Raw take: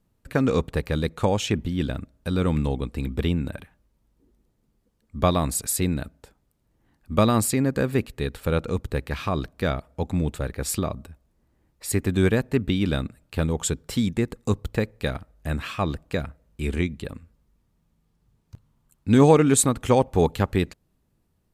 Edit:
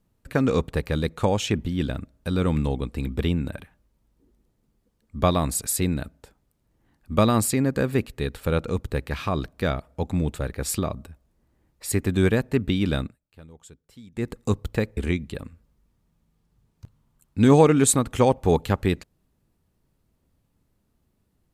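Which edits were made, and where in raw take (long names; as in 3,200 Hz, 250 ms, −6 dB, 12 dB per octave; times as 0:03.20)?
0:13.02–0:14.28: duck −22.5 dB, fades 0.16 s
0:14.97–0:16.67: remove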